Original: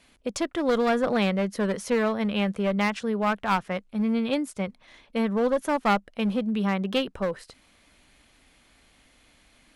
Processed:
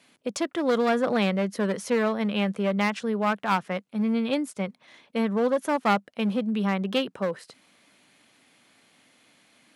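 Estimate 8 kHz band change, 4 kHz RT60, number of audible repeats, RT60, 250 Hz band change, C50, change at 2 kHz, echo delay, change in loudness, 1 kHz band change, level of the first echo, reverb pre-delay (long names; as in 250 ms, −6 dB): 0.0 dB, no reverb audible, no echo audible, no reverb audible, 0.0 dB, no reverb audible, 0.0 dB, no echo audible, 0.0 dB, 0.0 dB, no echo audible, no reverb audible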